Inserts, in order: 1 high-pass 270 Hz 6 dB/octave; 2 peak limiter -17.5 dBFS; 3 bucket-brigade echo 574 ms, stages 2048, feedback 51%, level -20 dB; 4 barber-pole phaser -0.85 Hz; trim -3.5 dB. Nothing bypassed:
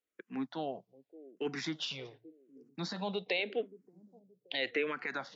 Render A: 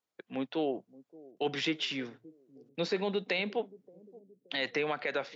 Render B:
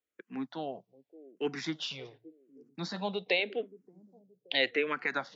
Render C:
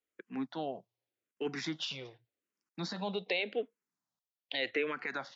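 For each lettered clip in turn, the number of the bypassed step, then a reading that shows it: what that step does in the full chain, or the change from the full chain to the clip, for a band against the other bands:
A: 4, 125 Hz band -1.5 dB; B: 2, crest factor change +3.0 dB; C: 3, momentary loudness spread change -3 LU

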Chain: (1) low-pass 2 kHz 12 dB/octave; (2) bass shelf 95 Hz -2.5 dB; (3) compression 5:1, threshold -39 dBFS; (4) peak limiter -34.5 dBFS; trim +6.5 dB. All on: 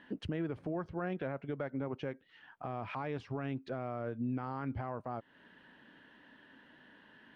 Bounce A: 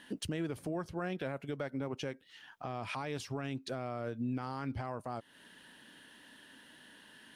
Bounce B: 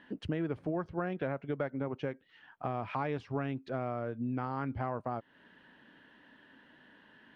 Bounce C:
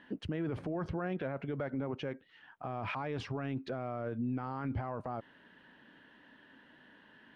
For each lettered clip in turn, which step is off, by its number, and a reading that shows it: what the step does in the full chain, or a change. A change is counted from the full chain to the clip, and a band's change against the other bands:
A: 1, 4 kHz band +8.5 dB; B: 4, crest factor change +4.5 dB; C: 3, mean gain reduction 10.0 dB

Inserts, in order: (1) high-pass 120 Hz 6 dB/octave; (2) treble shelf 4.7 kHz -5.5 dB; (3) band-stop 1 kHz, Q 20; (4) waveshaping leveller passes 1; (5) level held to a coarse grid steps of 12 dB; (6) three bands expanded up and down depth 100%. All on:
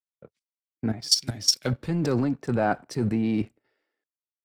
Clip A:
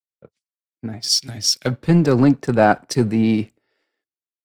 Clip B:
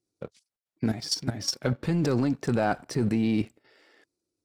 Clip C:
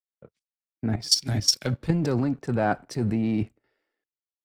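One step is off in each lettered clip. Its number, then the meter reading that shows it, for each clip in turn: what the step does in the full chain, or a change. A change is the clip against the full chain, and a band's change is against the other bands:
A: 5, crest factor change -5.0 dB; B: 6, 8 kHz band -7.0 dB; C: 1, 125 Hz band +2.0 dB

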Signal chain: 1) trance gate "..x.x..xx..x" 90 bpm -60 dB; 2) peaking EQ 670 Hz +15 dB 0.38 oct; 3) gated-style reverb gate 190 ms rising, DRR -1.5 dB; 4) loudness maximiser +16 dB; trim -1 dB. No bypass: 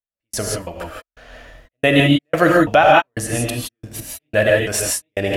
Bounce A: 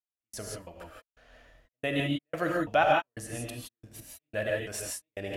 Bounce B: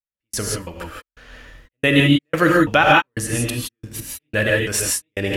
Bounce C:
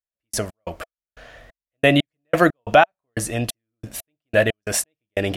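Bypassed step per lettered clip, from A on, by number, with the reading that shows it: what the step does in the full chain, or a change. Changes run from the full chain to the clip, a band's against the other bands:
4, crest factor change +6.0 dB; 2, 500 Hz band -5.0 dB; 3, crest factor change +4.5 dB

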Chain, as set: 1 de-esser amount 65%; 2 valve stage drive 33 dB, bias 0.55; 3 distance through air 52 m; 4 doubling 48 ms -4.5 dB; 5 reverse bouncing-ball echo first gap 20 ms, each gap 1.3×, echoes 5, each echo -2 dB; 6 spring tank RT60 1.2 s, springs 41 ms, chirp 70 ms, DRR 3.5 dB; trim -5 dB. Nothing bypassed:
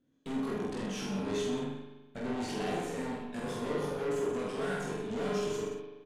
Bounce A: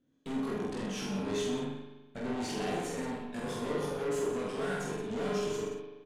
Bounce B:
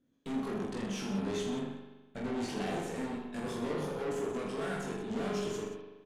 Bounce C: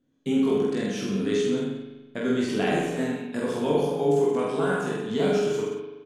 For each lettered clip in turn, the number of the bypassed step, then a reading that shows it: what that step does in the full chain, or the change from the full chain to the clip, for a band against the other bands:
1, 8 kHz band +2.0 dB; 4, loudness change -1.5 LU; 2, 8 kHz band -4.0 dB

